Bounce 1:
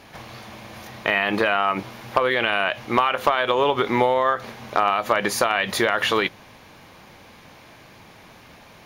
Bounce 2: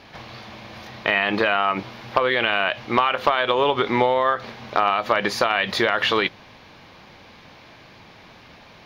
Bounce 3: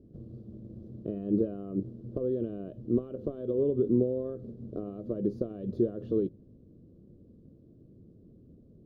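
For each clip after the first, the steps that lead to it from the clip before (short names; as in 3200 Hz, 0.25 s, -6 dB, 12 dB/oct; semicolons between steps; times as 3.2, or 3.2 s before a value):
resonant high shelf 6300 Hz -10.5 dB, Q 1.5
in parallel at -10 dB: requantised 6-bit, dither none; on the sum: inverse Chebyshev low-pass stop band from 800 Hz, stop band 40 dB; gain -2.5 dB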